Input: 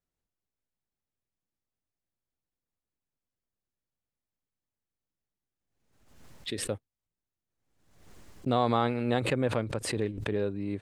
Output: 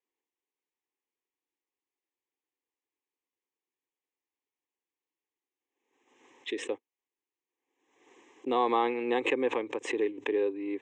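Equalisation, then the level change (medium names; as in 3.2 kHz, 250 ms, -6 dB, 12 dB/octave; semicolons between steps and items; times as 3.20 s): high-pass 250 Hz 24 dB/octave; steep low-pass 7.1 kHz 48 dB/octave; static phaser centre 940 Hz, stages 8; +4.0 dB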